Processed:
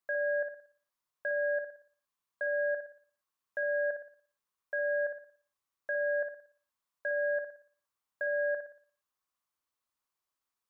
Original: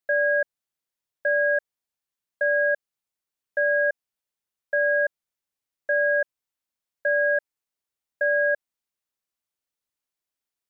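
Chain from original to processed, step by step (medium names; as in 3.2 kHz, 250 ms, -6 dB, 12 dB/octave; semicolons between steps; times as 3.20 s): peaking EQ 1.1 kHz +12 dB 0.55 oct; peak limiter -23 dBFS, peak gain reduction 9.5 dB; on a send: flutter echo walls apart 10 m, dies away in 0.47 s; on the sum: trim -3 dB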